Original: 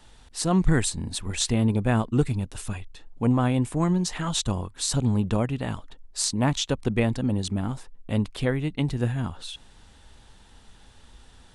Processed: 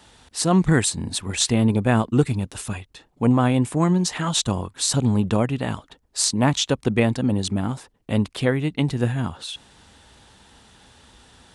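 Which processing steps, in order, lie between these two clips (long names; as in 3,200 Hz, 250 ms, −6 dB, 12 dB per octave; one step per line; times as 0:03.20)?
high-pass filter 60 Hz
low-shelf EQ 88 Hz −6 dB
level +5 dB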